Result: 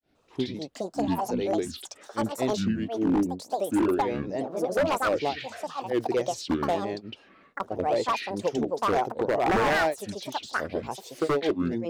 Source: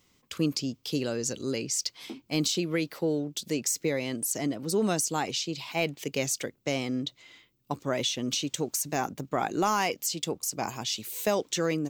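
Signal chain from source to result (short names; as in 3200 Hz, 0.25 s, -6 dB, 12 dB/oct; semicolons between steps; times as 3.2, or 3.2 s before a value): band shelf 600 Hz +12 dB; grains 0.233 s, grains 15/s, spray 0.168 s, pitch spread up and down by 12 st; high shelf 6100 Hz -11.5 dB; wavefolder -17.5 dBFS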